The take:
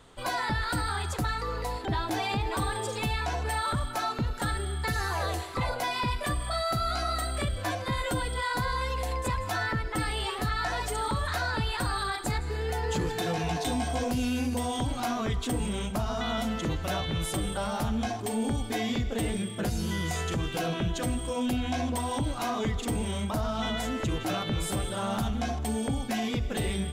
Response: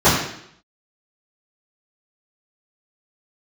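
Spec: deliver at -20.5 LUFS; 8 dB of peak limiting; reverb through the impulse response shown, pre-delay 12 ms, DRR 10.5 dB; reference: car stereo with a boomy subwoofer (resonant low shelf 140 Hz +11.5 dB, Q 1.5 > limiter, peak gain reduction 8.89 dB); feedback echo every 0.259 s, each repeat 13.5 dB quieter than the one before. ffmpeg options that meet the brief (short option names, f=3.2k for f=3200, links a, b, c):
-filter_complex "[0:a]alimiter=level_in=4.5dB:limit=-24dB:level=0:latency=1,volume=-4.5dB,aecho=1:1:259|518:0.211|0.0444,asplit=2[a][b];[1:a]atrim=start_sample=2205,adelay=12[c];[b][c]afir=irnorm=-1:irlink=0,volume=-36dB[d];[a][d]amix=inputs=2:normalize=0,lowshelf=f=140:t=q:w=1.5:g=11.5,volume=10dB,alimiter=limit=-10.5dB:level=0:latency=1"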